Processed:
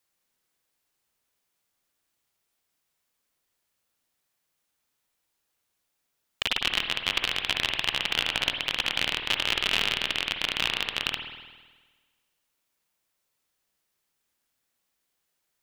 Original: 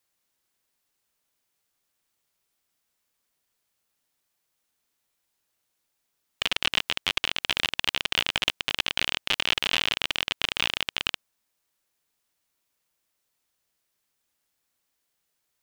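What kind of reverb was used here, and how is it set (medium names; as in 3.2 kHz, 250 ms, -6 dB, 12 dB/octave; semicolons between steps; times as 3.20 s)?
spring tank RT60 1.4 s, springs 51 ms, chirp 40 ms, DRR 4.5 dB; trim -1 dB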